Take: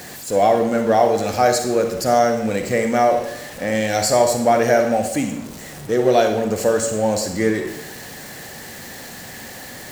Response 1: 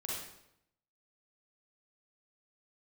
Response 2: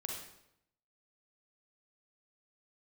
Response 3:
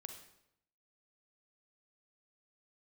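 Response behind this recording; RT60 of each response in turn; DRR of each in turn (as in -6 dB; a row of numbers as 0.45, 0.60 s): 3; 0.80, 0.80, 0.80 s; -5.5, -0.5, 5.0 dB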